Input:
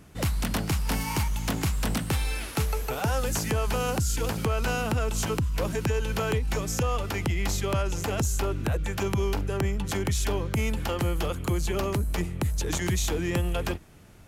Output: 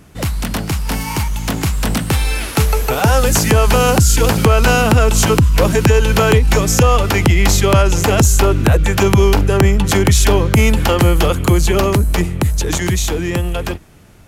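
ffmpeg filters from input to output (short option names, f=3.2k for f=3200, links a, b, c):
-af "dynaudnorm=f=290:g=17:m=8dB,volume=7.5dB"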